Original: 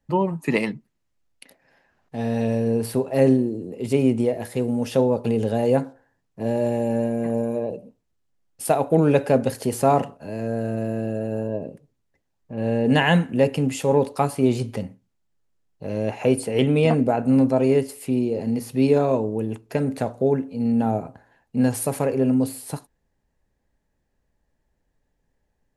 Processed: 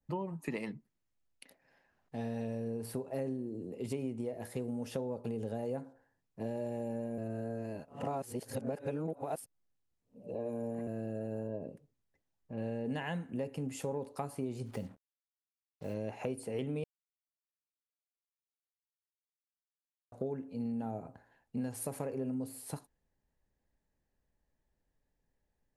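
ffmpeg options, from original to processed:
-filter_complex "[0:a]asplit=3[a][b][c];[a]afade=t=out:st=14.65:d=0.02[d];[b]acrusher=bits=7:mix=0:aa=0.5,afade=t=in:st=14.65:d=0.02,afade=t=out:st=15.93:d=0.02[e];[c]afade=t=in:st=15.93:d=0.02[f];[d][e][f]amix=inputs=3:normalize=0,asplit=5[g][h][i][j][k];[g]atrim=end=7.182[l];[h]atrim=start=7.178:end=10.872,asetpts=PTS-STARTPTS,areverse[m];[i]atrim=start=10.868:end=16.84,asetpts=PTS-STARTPTS,afade=t=out:st=5.968:d=0.004:c=hsin[n];[j]atrim=start=16.84:end=20.12,asetpts=PTS-STARTPTS,volume=0[o];[k]atrim=start=20.12,asetpts=PTS-STARTPTS,afade=t=in:d=0.004:c=hsin[p];[l][m]acrossfade=d=0.004:c1=hsin:c2=hsin[q];[n][o][p]concat=n=3:v=0:a=1[r];[q][r]acrossfade=d=0.004:c1=hsin:c2=hsin,adynamicequalizer=threshold=0.00562:dfrequency=3200:dqfactor=0.87:tfrequency=3200:tqfactor=0.87:attack=5:release=100:ratio=0.375:range=2.5:mode=cutabove:tftype=bell,acompressor=threshold=-25dB:ratio=6,volume=-9dB"

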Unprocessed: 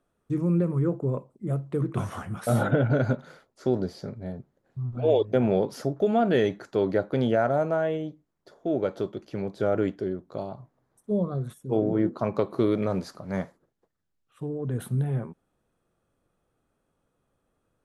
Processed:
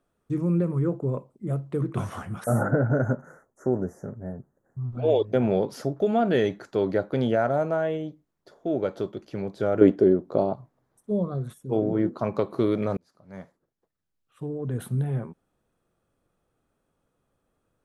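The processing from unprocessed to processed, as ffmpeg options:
-filter_complex "[0:a]asettb=1/sr,asplit=3[a][b][c];[a]atrim=end=2.444[d];[b]atrim=start=2.44:end=4.84,asetpts=PTS-STARTPTS,afade=t=in:d=0.004:c=qsin,afade=t=out:st=2.396:d=0.004:c=qsin,asuperstop=centerf=3400:order=12:qfactor=0.81[e];[c]atrim=start=4.836[f];[d][e]acrossfade=d=0.004:c1=hsin:c2=qsin[g];[g][f]acrossfade=d=0.004:c1=qsin:c2=hsin,asettb=1/sr,asplit=3[h][i][j];[h]atrim=end=9.814[k];[i]atrim=start=9.81:end=10.54,asetpts=PTS-STARTPTS,afade=t=in:d=0.004:c=qsin,afade=t=out:st=0.726:d=0.004:c=qsin,equalizer=f=390:w=0.37:g=12[l];[j]atrim=start=10.536[m];[k][l]acrossfade=d=0.004:c1=hsin:c2=qsin[n];[n][m]acrossfade=d=0.004:c1=qsin:c2=hsin,asplit=2[o][p];[o]atrim=end=12.97,asetpts=PTS-STARTPTS,afade=t=out:st=12.966:d=0.004:c=hsin[q];[p]atrim=start=12.97,asetpts=PTS-STARTPTS,afade=t=in:d=1.5[r];[q][r]concat=n=2:v=0:a=1"

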